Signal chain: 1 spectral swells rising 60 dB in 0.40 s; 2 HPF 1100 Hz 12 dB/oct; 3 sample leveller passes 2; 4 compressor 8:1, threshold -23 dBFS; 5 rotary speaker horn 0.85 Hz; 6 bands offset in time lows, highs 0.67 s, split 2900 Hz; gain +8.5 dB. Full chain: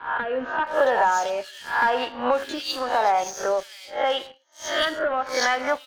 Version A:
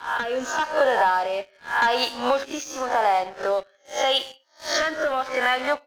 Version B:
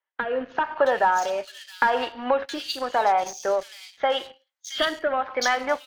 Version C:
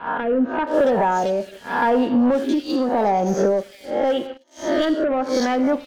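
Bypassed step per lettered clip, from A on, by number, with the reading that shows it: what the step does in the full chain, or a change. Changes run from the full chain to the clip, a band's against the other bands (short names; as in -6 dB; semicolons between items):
6, echo-to-direct -12.5 dB to none; 1, crest factor change +2.0 dB; 2, 250 Hz band +20.5 dB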